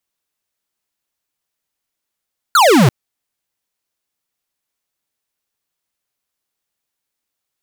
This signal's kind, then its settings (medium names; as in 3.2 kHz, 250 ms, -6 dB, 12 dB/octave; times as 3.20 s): laser zap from 1.5 kHz, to 110 Hz, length 0.34 s square, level -9 dB